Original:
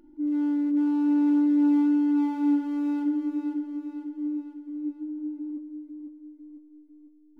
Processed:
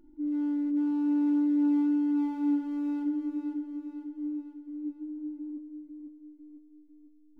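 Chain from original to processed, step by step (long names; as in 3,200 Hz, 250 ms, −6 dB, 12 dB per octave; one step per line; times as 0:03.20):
low-shelf EQ 170 Hz +9.5 dB
level −6.5 dB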